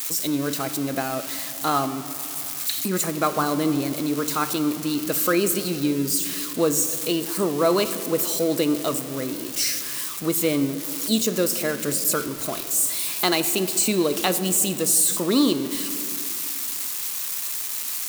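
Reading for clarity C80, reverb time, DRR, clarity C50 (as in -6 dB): 13.0 dB, 2.4 s, 10.0 dB, 12.0 dB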